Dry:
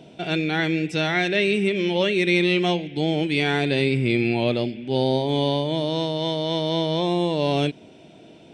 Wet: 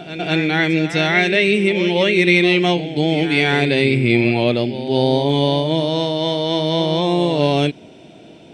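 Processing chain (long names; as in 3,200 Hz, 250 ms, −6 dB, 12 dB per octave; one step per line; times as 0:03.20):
dynamic equaliser 2,100 Hz, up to +4 dB, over −38 dBFS, Q 5.2
on a send: backwards echo 204 ms −11.5 dB
on the sum: level +5 dB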